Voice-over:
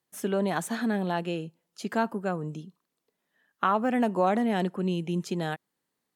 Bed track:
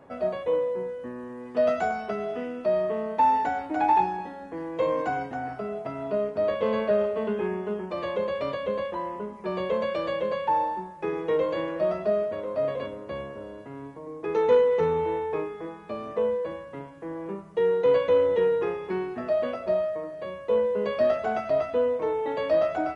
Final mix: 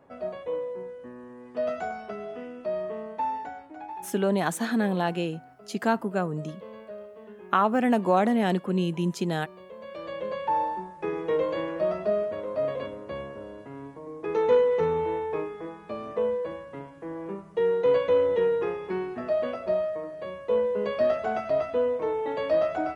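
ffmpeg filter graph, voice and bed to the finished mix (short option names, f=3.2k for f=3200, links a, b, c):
-filter_complex "[0:a]adelay=3900,volume=2.5dB[a];[1:a]volume=11dB,afade=t=out:st=2.96:d=0.92:silence=0.251189,afade=t=in:st=9.77:d=0.83:silence=0.141254[b];[a][b]amix=inputs=2:normalize=0"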